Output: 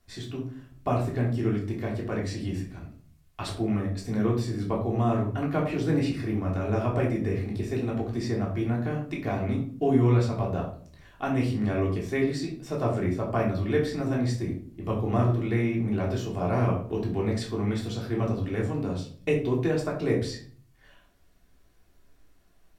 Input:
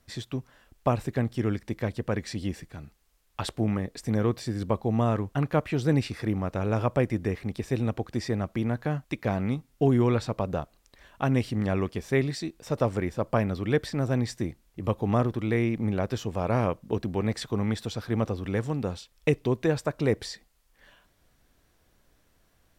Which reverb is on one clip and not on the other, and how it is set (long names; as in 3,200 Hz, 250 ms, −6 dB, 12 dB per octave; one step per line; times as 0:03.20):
rectangular room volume 490 cubic metres, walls furnished, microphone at 3.3 metres
level −6 dB